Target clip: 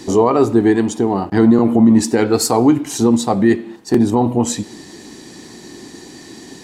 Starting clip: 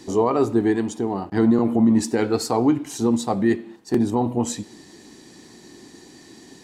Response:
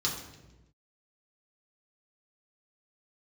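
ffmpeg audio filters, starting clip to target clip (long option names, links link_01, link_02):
-filter_complex "[0:a]asplit=2[link_01][link_02];[link_02]alimiter=limit=-16dB:level=0:latency=1:release=282,volume=0dB[link_03];[link_01][link_03]amix=inputs=2:normalize=0,asettb=1/sr,asplit=3[link_04][link_05][link_06];[link_04]atrim=end=2.244[link_07];[link_05]atrim=start=2.24:end=2.81,asetpts=PTS-STARTPTS,afade=type=in:duration=0.004:curve=qsin,afade=type=out:start_time=0.566:duration=0.004:curve=qsin,adynamicequalizer=threshold=0.0112:dfrequency=6400:dqfactor=0.7:tfrequency=6400:tqfactor=0.7:attack=5:release=100:ratio=0.375:range=4:mode=boostabove:tftype=highshelf[link_08];[link_06]atrim=start=2.806[link_09];[link_07][link_08]acrossfade=duration=0.004:curve1=hsin:curve2=qsin[link_10];[link_10][link_09]acrossfade=duration=0.004:curve1=qsin:curve2=hsin,volume=3dB"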